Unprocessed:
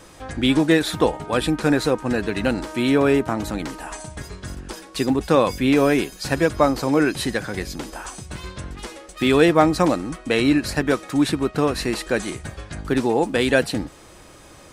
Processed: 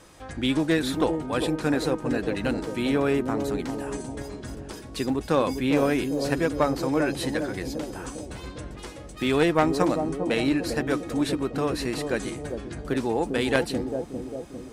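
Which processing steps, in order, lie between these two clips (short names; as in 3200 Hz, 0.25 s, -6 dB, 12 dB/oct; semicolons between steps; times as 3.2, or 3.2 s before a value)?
analogue delay 0.4 s, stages 2048, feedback 55%, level -6 dB; added harmonics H 2 -7 dB, 3 -14 dB, 5 -17 dB, 8 -32 dB, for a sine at 0 dBFS; gain -6.5 dB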